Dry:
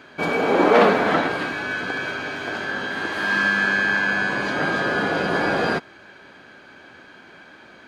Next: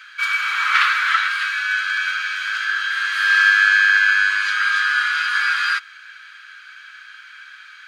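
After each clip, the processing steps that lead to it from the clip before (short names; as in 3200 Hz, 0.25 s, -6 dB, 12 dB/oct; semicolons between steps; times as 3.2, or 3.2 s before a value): elliptic high-pass 1300 Hz, stop band 50 dB; gain +7.5 dB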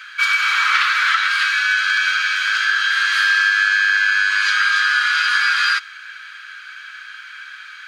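dynamic EQ 5100 Hz, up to +5 dB, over -33 dBFS, Q 0.98; compressor, threshold -18 dBFS, peak gain reduction 8.5 dB; gain +5 dB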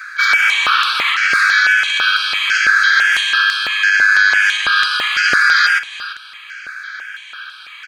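echo 0.341 s -14.5 dB; maximiser +7.5 dB; step phaser 6 Hz 830–6800 Hz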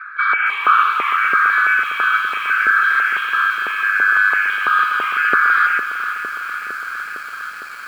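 speaker cabinet 170–2300 Hz, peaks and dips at 250 Hz +4 dB, 410 Hz +7 dB, 1200 Hz +9 dB, 1900 Hz -7 dB; lo-fi delay 0.457 s, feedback 80%, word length 6-bit, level -10.5 dB; gain -2.5 dB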